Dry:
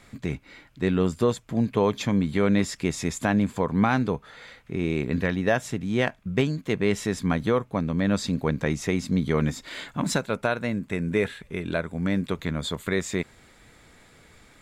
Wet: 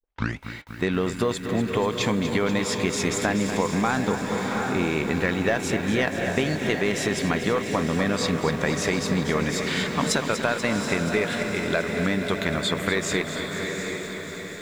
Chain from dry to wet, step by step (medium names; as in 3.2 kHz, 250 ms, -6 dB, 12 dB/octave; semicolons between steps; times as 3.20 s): tape start-up on the opening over 0.38 s; gate -47 dBFS, range -28 dB; in parallel at +3 dB: level held to a coarse grid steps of 14 dB; on the sum: overdrive pedal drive 8 dB, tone 7.3 kHz, clips at -5 dBFS; on a send: echo that smears into a reverb 750 ms, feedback 47%, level -9 dB; on the sum: compression, threshold -20 dBFS, peak gain reduction 7.5 dB; bit-crushed delay 242 ms, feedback 80%, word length 8-bit, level -10 dB